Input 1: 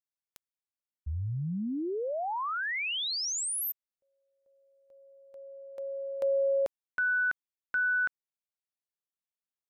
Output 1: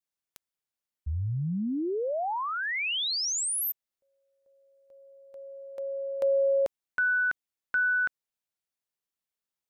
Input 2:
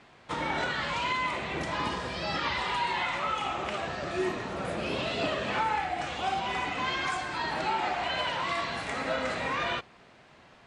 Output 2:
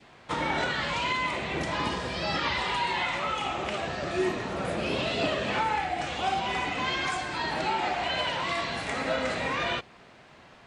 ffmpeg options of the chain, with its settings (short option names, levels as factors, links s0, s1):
-af "adynamicequalizer=threshold=0.0112:dfrequency=1200:dqfactor=1.3:tfrequency=1200:tqfactor=1.3:attack=5:release=100:ratio=0.375:range=2:mode=cutabove:tftype=bell,volume=1.41"